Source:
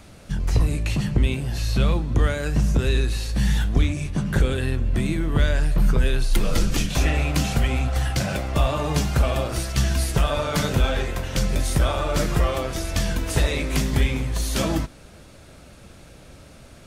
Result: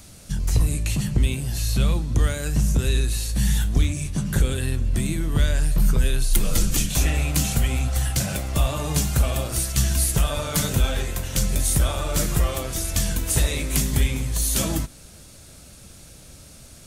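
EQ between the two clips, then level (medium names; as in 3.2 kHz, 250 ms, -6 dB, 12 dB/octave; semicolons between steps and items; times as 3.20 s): tone controls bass +5 dB, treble +8 dB; treble shelf 4 kHz +8.5 dB; dynamic bell 5.1 kHz, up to -5 dB, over -37 dBFS, Q 1.9; -5.0 dB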